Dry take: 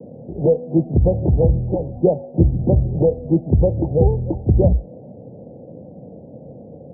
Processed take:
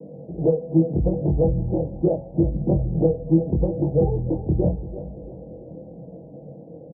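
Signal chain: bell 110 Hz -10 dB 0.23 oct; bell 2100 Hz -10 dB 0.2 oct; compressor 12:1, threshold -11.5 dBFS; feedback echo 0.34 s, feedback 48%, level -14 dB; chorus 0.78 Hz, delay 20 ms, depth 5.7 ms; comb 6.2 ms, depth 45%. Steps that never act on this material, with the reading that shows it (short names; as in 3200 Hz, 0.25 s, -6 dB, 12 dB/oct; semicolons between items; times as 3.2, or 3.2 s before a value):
bell 2100 Hz: input band ends at 810 Hz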